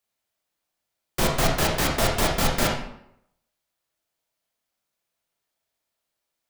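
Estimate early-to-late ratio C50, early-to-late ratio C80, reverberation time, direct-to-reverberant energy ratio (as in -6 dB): 4.0 dB, 7.5 dB, 0.75 s, -0.5 dB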